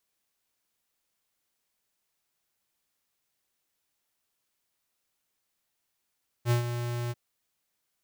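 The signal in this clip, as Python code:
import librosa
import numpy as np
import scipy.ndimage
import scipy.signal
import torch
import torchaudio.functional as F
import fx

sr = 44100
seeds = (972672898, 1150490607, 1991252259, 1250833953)

y = fx.adsr_tone(sr, wave='square', hz=120.0, attack_ms=59.0, decay_ms=116.0, sustain_db=-9.5, held_s=0.66, release_ms=31.0, level_db=-22.5)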